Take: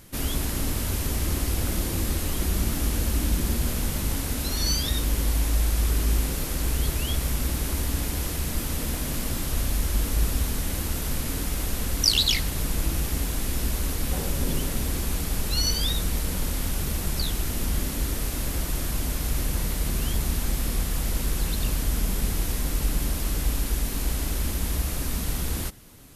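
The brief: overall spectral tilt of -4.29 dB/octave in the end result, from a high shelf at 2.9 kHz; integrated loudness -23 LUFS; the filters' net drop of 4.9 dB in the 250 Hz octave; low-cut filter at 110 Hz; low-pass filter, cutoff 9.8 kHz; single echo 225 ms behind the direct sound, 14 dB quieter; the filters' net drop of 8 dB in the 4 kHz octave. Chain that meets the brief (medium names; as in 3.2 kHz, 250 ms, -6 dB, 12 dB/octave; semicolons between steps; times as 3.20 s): high-pass 110 Hz; low-pass 9.8 kHz; peaking EQ 250 Hz -6 dB; treble shelf 2.9 kHz -6.5 dB; peaking EQ 4 kHz -4.5 dB; delay 225 ms -14 dB; trim +12 dB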